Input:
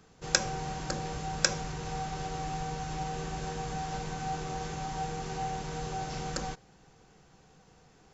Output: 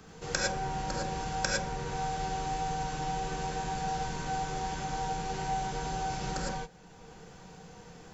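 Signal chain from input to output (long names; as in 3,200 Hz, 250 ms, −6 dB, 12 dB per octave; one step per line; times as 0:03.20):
reverb whose tail is shaped and stops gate 130 ms rising, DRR −3.5 dB
multiband upward and downward compressor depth 40%
level −4 dB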